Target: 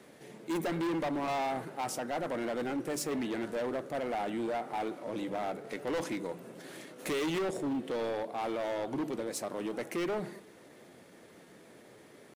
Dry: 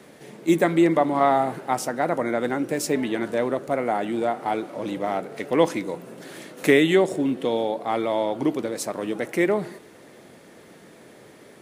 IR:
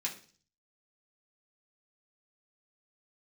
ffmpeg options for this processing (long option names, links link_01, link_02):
-af "bandreject=frequency=49.61:width_type=h:width=4,bandreject=frequency=99.22:width_type=h:width=4,bandreject=frequency=148.83:width_type=h:width=4,bandreject=frequency=198.44:width_type=h:width=4,atempo=0.94,asoftclip=type=hard:threshold=-23dB,volume=-7dB"